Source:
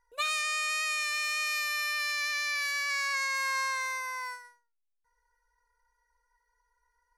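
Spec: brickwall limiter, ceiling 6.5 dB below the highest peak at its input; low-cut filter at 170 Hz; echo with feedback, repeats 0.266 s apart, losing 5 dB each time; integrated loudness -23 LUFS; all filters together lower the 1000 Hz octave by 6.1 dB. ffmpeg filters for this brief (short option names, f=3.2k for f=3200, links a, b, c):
-af "highpass=170,equalizer=f=1k:t=o:g=-7,alimiter=level_in=2dB:limit=-24dB:level=0:latency=1,volume=-2dB,aecho=1:1:266|532|798|1064|1330|1596|1862:0.562|0.315|0.176|0.0988|0.0553|0.031|0.0173,volume=10dB"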